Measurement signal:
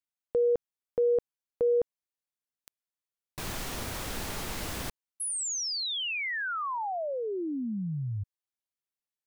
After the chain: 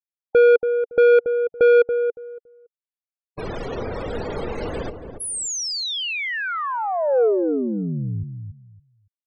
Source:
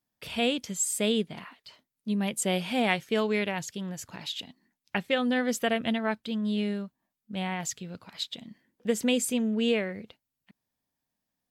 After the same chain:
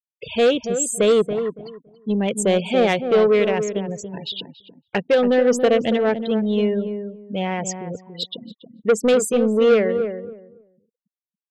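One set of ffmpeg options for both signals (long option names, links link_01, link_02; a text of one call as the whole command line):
ffmpeg -i in.wav -filter_complex "[0:a]afftfilt=real='re*gte(hypot(re,im),0.0178)':imag='im*gte(hypot(re,im),0.0178)':win_size=1024:overlap=0.75,lowpass=11000,equalizer=frequency=470:width=2:gain=12.5,asoftclip=type=tanh:threshold=-16.5dB,asplit=2[link_01][link_02];[link_02]adelay=281,lowpass=frequency=860:poles=1,volume=-7dB,asplit=2[link_03][link_04];[link_04]adelay=281,lowpass=frequency=860:poles=1,volume=0.21,asplit=2[link_05][link_06];[link_06]adelay=281,lowpass=frequency=860:poles=1,volume=0.21[link_07];[link_01][link_03][link_05][link_07]amix=inputs=4:normalize=0,volume=6dB" out.wav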